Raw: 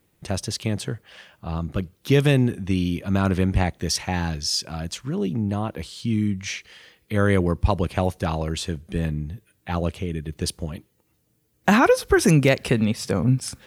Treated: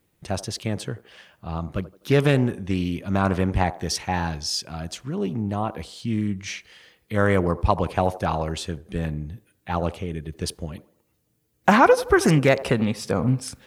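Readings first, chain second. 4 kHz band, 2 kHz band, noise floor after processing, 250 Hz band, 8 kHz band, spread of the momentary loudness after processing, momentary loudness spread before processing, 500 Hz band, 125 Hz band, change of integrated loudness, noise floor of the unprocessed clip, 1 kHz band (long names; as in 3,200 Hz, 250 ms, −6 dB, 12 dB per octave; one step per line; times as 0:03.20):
−2.5 dB, +0.5 dB, −69 dBFS, −1.5 dB, −3.0 dB, 15 LU, 14 LU, +1.0 dB, −2.0 dB, −0.5 dB, −67 dBFS, +4.0 dB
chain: delay with a band-pass on its return 84 ms, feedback 41%, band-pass 620 Hz, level −14 dB
dynamic equaliser 900 Hz, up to +7 dB, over −35 dBFS, Q 0.8
highs frequency-modulated by the lows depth 0.2 ms
level −2.5 dB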